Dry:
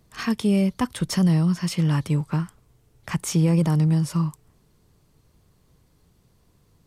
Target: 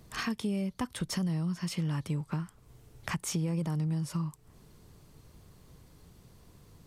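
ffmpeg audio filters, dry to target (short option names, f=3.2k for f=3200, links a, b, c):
-af "acompressor=threshold=-40dB:ratio=3,volume=4.5dB"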